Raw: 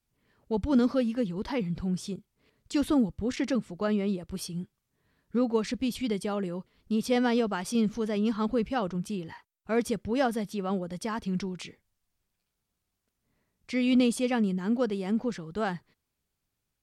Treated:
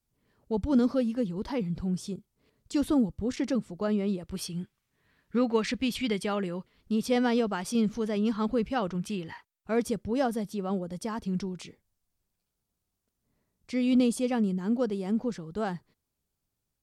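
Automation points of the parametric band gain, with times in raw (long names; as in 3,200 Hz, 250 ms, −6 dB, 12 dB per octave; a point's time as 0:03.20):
parametric band 2,200 Hz 1.9 octaves
0:03.92 −5 dB
0:04.62 +6.5 dB
0:06.35 +6.5 dB
0:06.99 −1 dB
0:08.67 −1 dB
0:09.13 +6 dB
0:10.00 −6 dB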